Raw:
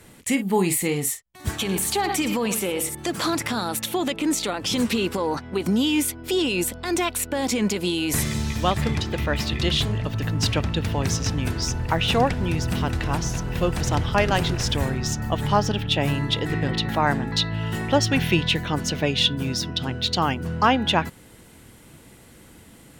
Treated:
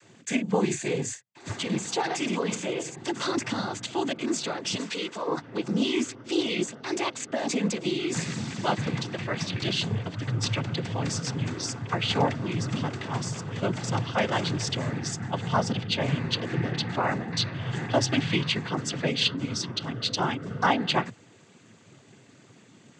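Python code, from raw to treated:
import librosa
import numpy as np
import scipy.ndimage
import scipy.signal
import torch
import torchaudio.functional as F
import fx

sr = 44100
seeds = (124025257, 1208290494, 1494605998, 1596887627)

y = fx.highpass(x, sr, hz=700.0, slope=6, at=(4.74, 5.27))
y = fx.noise_vocoder(y, sr, seeds[0], bands=16)
y = F.gain(torch.from_numpy(y), -4.0).numpy()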